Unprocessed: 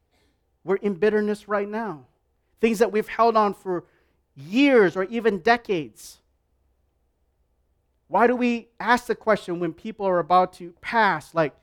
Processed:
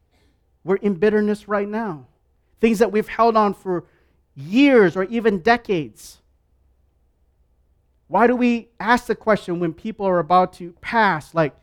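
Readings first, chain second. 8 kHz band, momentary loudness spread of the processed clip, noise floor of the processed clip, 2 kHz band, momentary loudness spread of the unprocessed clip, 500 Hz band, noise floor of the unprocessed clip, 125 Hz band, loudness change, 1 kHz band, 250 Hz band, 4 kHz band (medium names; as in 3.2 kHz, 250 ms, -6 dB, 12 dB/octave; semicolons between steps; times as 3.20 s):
no reading, 11 LU, -64 dBFS, +2.5 dB, 11 LU, +3.0 dB, -71 dBFS, +6.5 dB, +3.0 dB, +2.5 dB, +5.0 dB, +2.0 dB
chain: tone controls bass +5 dB, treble -1 dB; trim +2.5 dB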